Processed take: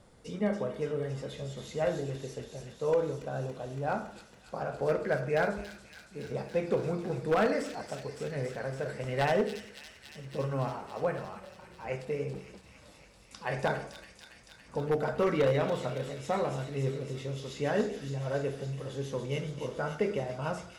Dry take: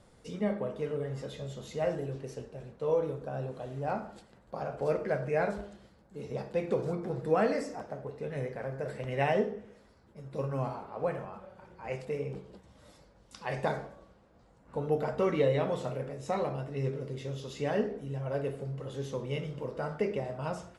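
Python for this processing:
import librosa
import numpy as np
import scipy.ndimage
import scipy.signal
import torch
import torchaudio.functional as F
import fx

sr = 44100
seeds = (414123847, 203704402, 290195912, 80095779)

p1 = fx.dynamic_eq(x, sr, hz=1500.0, q=4.2, threshold_db=-54.0, ratio=4.0, max_db=5)
p2 = 10.0 ** (-20.0 / 20.0) * (np.abs((p1 / 10.0 ** (-20.0 / 20.0) + 3.0) % 4.0 - 2.0) - 1.0)
p3 = p2 + fx.echo_wet_highpass(p2, sr, ms=281, feedback_pct=80, hz=3700.0, wet_db=-3.0, dry=0)
y = p3 * 10.0 ** (1.0 / 20.0)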